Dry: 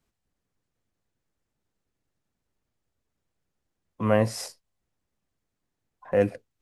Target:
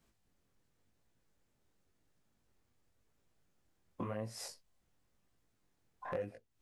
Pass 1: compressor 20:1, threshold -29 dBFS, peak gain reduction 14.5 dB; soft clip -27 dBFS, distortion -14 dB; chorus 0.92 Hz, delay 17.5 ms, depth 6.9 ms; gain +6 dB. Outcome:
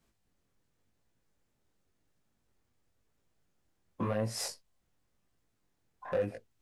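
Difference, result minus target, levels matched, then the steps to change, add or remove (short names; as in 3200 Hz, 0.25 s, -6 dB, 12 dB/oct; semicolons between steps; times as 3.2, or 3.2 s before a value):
compressor: peak gain reduction -10 dB
change: compressor 20:1, threshold -39.5 dBFS, peak gain reduction 24.5 dB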